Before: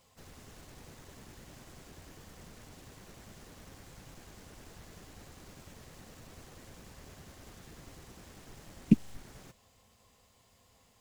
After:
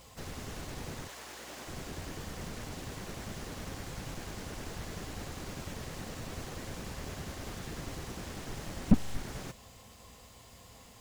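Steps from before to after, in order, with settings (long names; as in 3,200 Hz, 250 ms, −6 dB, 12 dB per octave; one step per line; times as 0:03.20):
0:01.07–0:01.67: high-pass filter 720 Hz → 310 Hz 12 dB per octave
mains hum 60 Hz, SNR 32 dB
slew-rate limiting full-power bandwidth 9.3 Hz
level +11 dB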